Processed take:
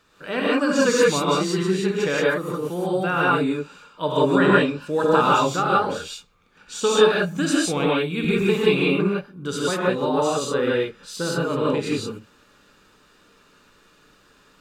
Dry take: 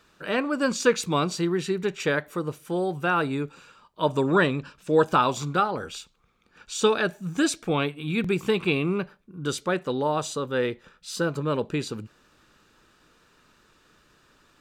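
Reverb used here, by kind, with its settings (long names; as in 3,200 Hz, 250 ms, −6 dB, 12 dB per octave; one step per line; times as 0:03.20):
reverb whose tail is shaped and stops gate 200 ms rising, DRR −5.5 dB
level −2 dB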